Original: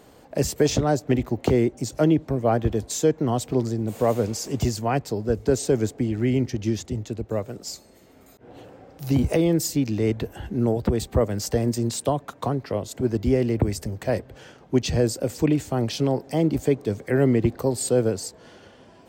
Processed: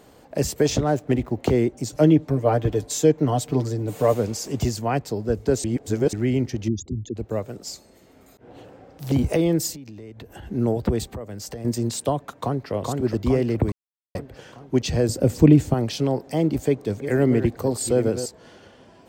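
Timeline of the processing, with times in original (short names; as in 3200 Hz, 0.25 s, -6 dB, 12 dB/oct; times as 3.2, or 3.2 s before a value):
0.85–1.37 median filter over 9 samples
1.9–4.14 comb 6.8 ms
5.64–6.13 reverse
6.68–7.16 formant sharpening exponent 3
7.68–9.12 Doppler distortion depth 0.95 ms
9.72–10.47 compressor 16:1, threshold -35 dBFS
11.06–11.65 compressor 4:1, threshold -32 dBFS
12.32–12.72 echo throw 0.42 s, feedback 60%, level -2.5 dB
13.72–14.15 mute
15.09–15.74 low shelf 390 Hz +11.5 dB
16.48–18.26 reverse delay 0.401 s, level -10 dB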